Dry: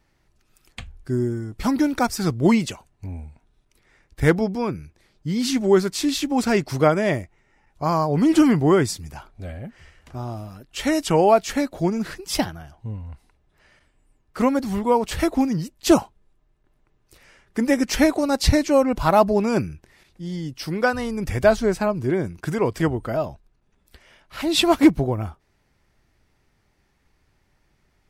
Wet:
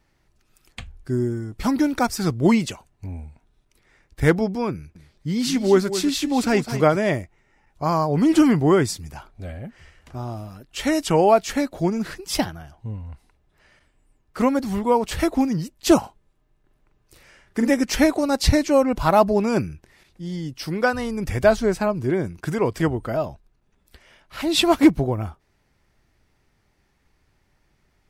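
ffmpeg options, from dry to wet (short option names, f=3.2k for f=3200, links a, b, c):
-filter_complex "[0:a]asettb=1/sr,asplit=3[a][b][c];[a]atrim=end=4.744[d];[b]atrim=start=4.74:end=6.97,asetpts=PTS-STARTPTS,afade=t=in:d=0.004:c=qsin,afade=t=out:st=2.226:d=0.004:c=qsin,aecho=1:1:211:0.266,atrim=end_sample=98343[e];[c]atrim=start=6.966[f];[d][e]acrossfade=d=0.004:c1=hsin:c2=qsin[g];[g][f]acrossfade=d=0.004:c1=qsin:c2=hsin,asettb=1/sr,asplit=3[h][i][j];[h]atrim=end=15.994[k];[i]atrim=start=15.99:end=17.7,asetpts=PTS-STARTPTS,afade=t=in:d=0.004:c=qsin,afade=t=out:st=1.706:d=0.004:c=qsin,asplit=2[l][m];[m]adelay=44,volume=-5.5dB[n];[l][n]amix=inputs=2:normalize=0,atrim=end_sample=75411[o];[j]atrim=start=17.696[p];[k][o]acrossfade=d=0.004:c1=hsin:c2=qsin[q];[q][p]acrossfade=d=0.004:c1=qsin:c2=hsin"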